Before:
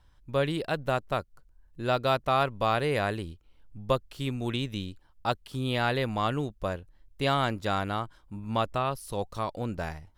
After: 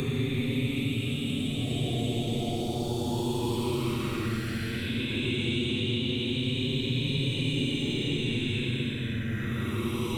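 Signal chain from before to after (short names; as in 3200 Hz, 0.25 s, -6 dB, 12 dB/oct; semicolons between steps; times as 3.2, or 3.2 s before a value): reverse delay 0.288 s, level -3 dB; Paulstretch 26×, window 0.05 s, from 4.34; three-band squash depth 70%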